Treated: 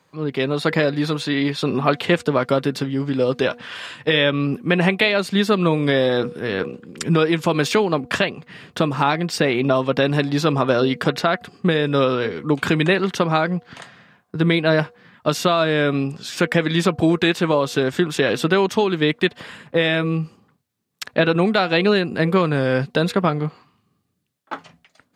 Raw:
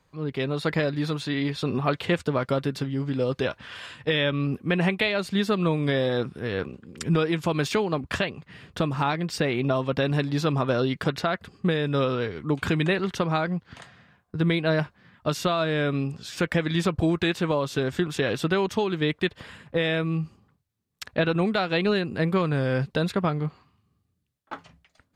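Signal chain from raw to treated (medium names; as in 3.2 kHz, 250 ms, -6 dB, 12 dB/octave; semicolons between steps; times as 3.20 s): high-pass 160 Hz 12 dB/octave; de-hum 241.2 Hz, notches 3; trim +7 dB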